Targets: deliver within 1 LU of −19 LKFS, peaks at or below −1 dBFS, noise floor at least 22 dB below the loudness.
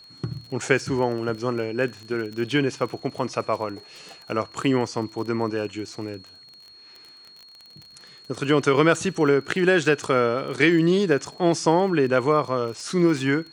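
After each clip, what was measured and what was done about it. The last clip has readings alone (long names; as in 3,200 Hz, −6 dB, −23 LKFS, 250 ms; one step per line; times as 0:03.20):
crackle rate 24 per second; interfering tone 4,300 Hz; level of the tone −46 dBFS; integrated loudness −23.0 LKFS; sample peak −3.5 dBFS; target loudness −19.0 LKFS
→ click removal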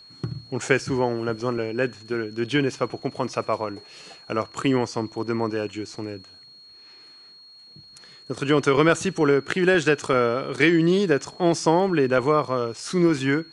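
crackle rate 0 per second; interfering tone 4,300 Hz; level of the tone −46 dBFS
→ notch filter 4,300 Hz, Q 30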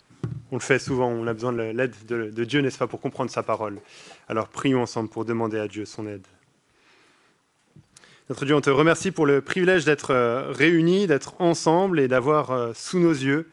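interfering tone none found; integrated loudness −23.0 LKFS; sample peak −3.5 dBFS; target loudness −19.0 LKFS
→ level +4 dB
brickwall limiter −1 dBFS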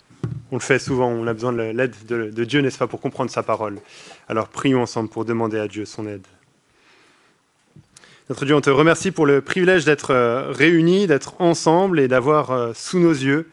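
integrated loudness −19.0 LKFS; sample peak −1.0 dBFS; background noise floor −60 dBFS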